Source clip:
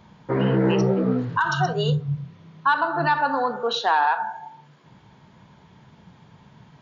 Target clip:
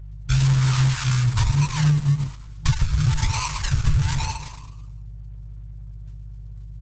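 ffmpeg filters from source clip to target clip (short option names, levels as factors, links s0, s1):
-filter_complex "[0:a]agate=range=0.0224:threshold=0.0126:ratio=3:detection=peak,acrusher=samples=36:mix=1:aa=0.000001:lfo=1:lforange=21.6:lforate=1.1,aresample=16000,aresample=44100,adynamicequalizer=threshold=0.01:dfrequency=4300:dqfactor=0.83:tfrequency=4300:tqfactor=0.83:attack=5:release=100:ratio=0.375:range=1.5:mode=cutabove:tftype=bell,aeval=exprs='val(0)+0.00355*(sin(2*PI*50*n/s)+sin(2*PI*2*50*n/s)/2+sin(2*PI*3*50*n/s)/3+sin(2*PI*4*50*n/s)/4+sin(2*PI*5*50*n/s)/5)':c=same,bass=f=250:g=14,treble=f=4000:g=10,asplit=2[s0][s1];[s1]asplit=5[s2][s3][s4][s5][s6];[s2]adelay=109,afreqshift=66,volume=0.316[s7];[s3]adelay=218,afreqshift=132,volume=0.158[s8];[s4]adelay=327,afreqshift=198,volume=0.0794[s9];[s5]adelay=436,afreqshift=264,volume=0.0394[s10];[s6]adelay=545,afreqshift=330,volume=0.0197[s11];[s7][s8][s9][s10][s11]amix=inputs=5:normalize=0[s12];[s0][s12]amix=inputs=2:normalize=0,afftfilt=real='re*(1-between(b*sr/4096,160,870))':imag='im*(1-between(b*sr/4096,160,870))':win_size=4096:overlap=0.75,acompressor=threshold=0.178:ratio=8" -ar 48000 -c:a libopus -b:a 10k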